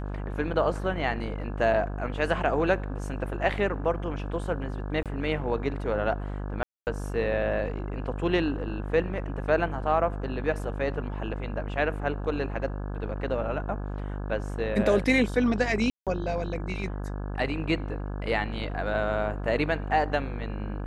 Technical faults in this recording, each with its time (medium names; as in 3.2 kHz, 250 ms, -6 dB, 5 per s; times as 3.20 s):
buzz 50 Hz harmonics 34 -33 dBFS
5.03–5.06 s: dropout 27 ms
6.63–6.87 s: dropout 239 ms
15.90–16.07 s: dropout 167 ms